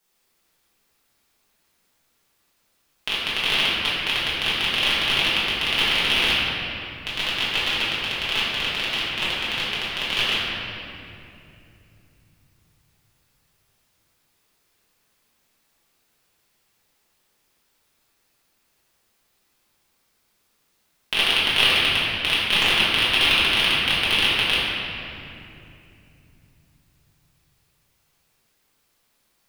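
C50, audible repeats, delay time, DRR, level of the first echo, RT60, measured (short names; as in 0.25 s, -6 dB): -2.5 dB, none, none, -10.5 dB, none, 2.8 s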